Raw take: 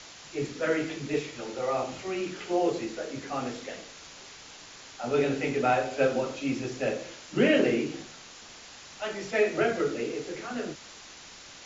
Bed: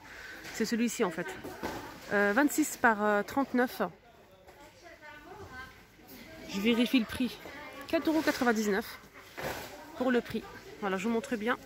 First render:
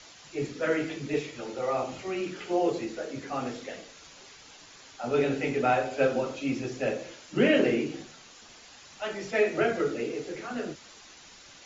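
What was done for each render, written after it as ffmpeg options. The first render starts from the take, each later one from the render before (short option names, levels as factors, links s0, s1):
-af "afftdn=nr=6:nf=-48"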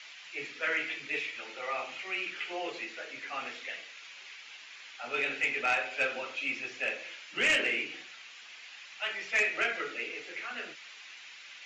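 -af "bandpass=f=2400:t=q:w=2.3:csg=0,aeval=exprs='0.0944*sin(PI/2*1.78*val(0)/0.0944)':c=same"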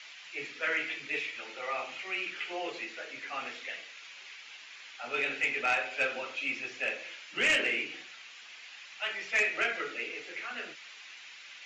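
-af anull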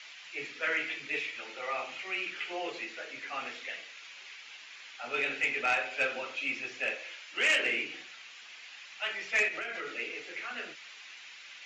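-filter_complex "[0:a]asettb=1/sr,asplit=3[s0][s1][s2];[s0]atrim=end=6.954[s3];[s1]atrim=start=6.95:end=7.65,asetpts=PTS-STARTPTS,afade=t=in:d=0.004:c=qsin,afade=t=out:st=0.696:d=0.004:c=qsin,highpass=380[s4];[s2]atrim=start=7.646[s5];[s3][s4]acrossfade=d=0.004:c1=hsin:c2=qsin[s6];[s6][s5]acrossfade=d=0.004:c1=qsin:c2=hsin,asettb=1/sr,asplit=3[s7][s8][s9];[s7]atrim=end=9.484[s10];[s8]atrim=start=9.48:end=9.98,asetpts=PTS-STARTPTS,afade=t=in:d=0.004:c=qsin,afade=t=out:st=0.496:d=0.004:c=qsin,acompressor=threshold=0.0224:ratio=12:attack=3.2:release=140:knee=1:detection=peak[s11];[s9]atrim=start=9.976[s12];[s10][s11]acrossfade=d=0.004:c1=hsin:c2=qsin[s13];[s13][s12]acrossfade=d=0.004:c1=qsin:c2=hsin"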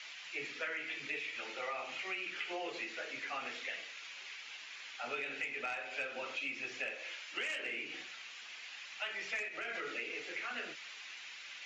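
-af "acompressor=threshold=0.0158:ratio=16"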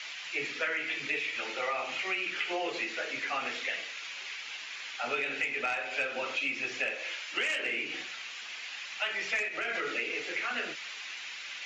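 -af "volume=2.37"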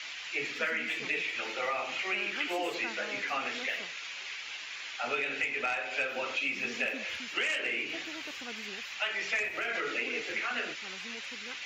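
-filter_complex "[1:a]volume=0.119[s0];[0:a][s0]amix=inputs=2:normalize=0"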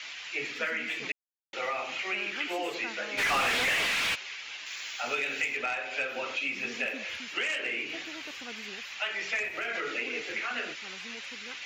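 -filter_complex "[0:a]asplit=3[s0][s1][s2];[s0]afade=t=out:st=3.17:d=0.02[s3];[s1]asplit=2[s4][s5];[s5]highpass=f=720:p=1,volume=44.7,asoftclip=type=tanh:threshold=0.106[s6];[s4][s6]amix=inputs=2:normalize=0,lowpass=f=3300:p=1,volume=0.501,afade=t=in:st=3.17:d=0.02,afade=t=out:st=4.14:d=0.02[s7];[s2]afade=t=in:st=4.14:d=0.02[s8];[s3][s7][s8]amix=inputs=3:normalize=0,asettb=1/sr,asplit=3[s9][s10][s11];[s9]atrim=end=4.664[s12];[s10]atrim=start=4.66:end=5.57,asetpts=PTS-STARTPTS,afade=t=in:d=0.004:c=qsin,afade=t=out:st=0.906:d=0.004:c=qsin,aemphasis=mode=production:type=50fm[s13];[s11]atrim=start=5.566[s14];[s12][s13]acrossfade=d=0.004:c1=hsin:c2=qsin[s15];[s15][s14]acrossfade=d=0.004:c1=qsin:c2=hsin,asplit=3[s16][s17][s18];[s16]atrim=end=1.12,asetpts=PTS-STARTPTS,afade=t=out:st=1.116:d=0.004:c=hsin[s19];[s17]atrim=start=1.12:end=1.53,asetpts=PTS-STARTPTS,volume=0[s20];[s18]atrim=start=1.53,asetpts=PTS-STARTPTS,afade=t=in:d=0.004:c=hsin[s21];[s19][s20][s21]concat=n=3:v=0:a=1"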